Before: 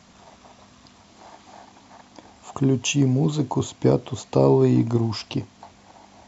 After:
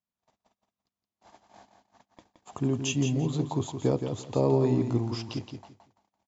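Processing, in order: gate -44 dBFS, range -37 dB; on a send: feedback delay 170 ms, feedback 21%, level -7.5 dB; on the sum: trim -7.5 dB

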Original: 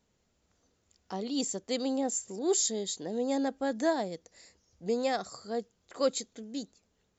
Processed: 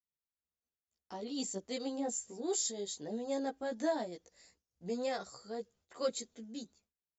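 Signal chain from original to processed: chorus voices 2, 0.32 Hz, delay 15 ms, depth 2.4 ms; expander -59 dBFS; trim -3 dB

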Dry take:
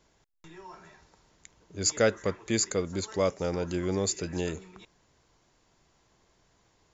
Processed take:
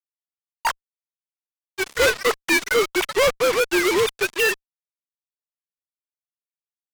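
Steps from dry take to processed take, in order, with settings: formants replaced by sine waves; dynamic bell 2 kHz, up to +6 dB, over -45 dBFS, Q 0.73; band-pass filter 2.1 kHz, Q 0.83; valve stage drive 22 dB, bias 0.45; fuzz box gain 57 dB, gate -49 dBFS; upward expansion 1.5:1, over -24 dBFS; trim -1.5 dB

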